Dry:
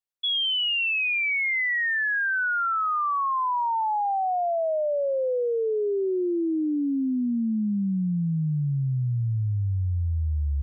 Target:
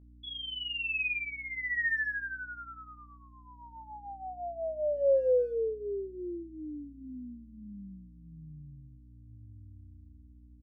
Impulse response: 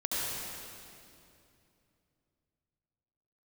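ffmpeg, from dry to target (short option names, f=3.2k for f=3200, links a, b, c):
-filter_complex "[0:a]asplit=3[a][b][c];[a]bandpass=f=530:t=q:w=8,volume=0dB[d];[b]bandpass=f=1.84k:t=q:w=8,volume=-6dB[e];[c]bandpass=f=2.48k:t=q:w=8,volume=-9dB[f];[d][e][f]amix=inputs=3:normalize=0,aeval=exprs='val(0)+0.00178*(sin(2*PI*60*n/s)+sin(2*PI*2*60*n/s)/2+sin(2*PI*3*60*n/s)/3+sin(2*PI*4*60*n/s)/4+sin(2*PI*5*60*n/s)/5)':c=same,asplit=2[g][h];[h]adelay=20,volume=-4dB[i];[g][i]amix=inputs=2:normalize=0,asplit=2[j][k];[k]adelay=120,highpass=300,lowpass=3.4k,asoftclip=type=hard:threshold=-27dB,volume=-27dB[l];[j][l]amix=inputs=2:normalize=0"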